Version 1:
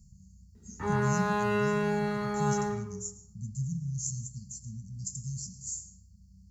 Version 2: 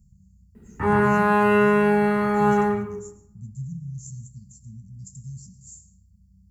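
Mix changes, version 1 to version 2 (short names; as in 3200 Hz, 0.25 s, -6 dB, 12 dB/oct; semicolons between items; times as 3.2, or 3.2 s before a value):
background +10.5 dB; master: add band shelf 4900 Hz -11.5 dB 1.2 oct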